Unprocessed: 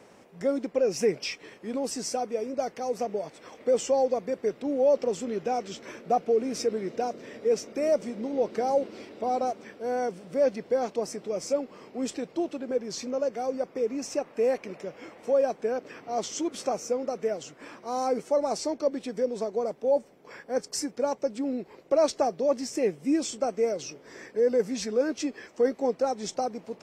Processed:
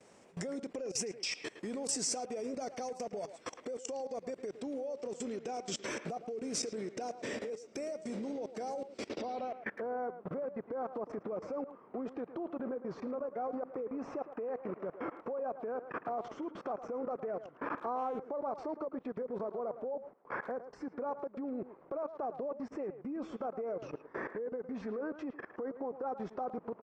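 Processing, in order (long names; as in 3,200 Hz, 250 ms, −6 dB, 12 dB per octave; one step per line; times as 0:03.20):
noise gate with hold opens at −45 dBFS
downward compressor 12 to 1, threshold −35 dBFS, peak gain reduction 17 dB
brickwall limiter −34.5 dBFS, peak gain reduction 10.5 dB
output level in coarse steps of 23 dB
low-pass filter sweep 8,200 Hz → 1,200 Hz, 0:09.02–0:09.82
far-end echo of a speakerphone 110 ms, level −11 dB
level +7.5 dB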